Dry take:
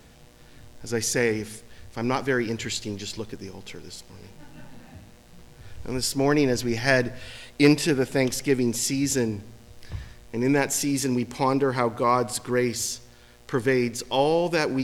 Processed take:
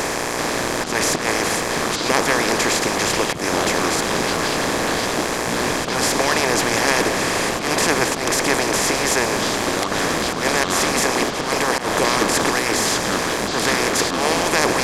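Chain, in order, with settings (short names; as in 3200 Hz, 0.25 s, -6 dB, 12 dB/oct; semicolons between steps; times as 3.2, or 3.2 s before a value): per-bin compression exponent 0.2; low shelf 390 Hz -7 dB; harmonic-percussive split harmonic -18 dB; auto swell 0.139 s; echoes that change speed 0.388 s, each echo -7 st, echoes 2, each echo -6 dB; gain +2.5 dB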